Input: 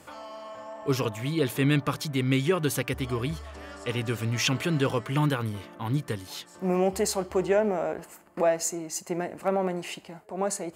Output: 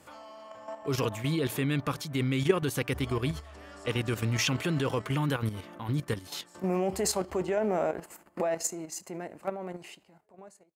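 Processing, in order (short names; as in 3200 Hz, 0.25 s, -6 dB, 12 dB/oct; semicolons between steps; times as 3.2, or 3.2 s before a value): ending faded out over 2.74 s; level quantiser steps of 10 dB; gain +2.5 dB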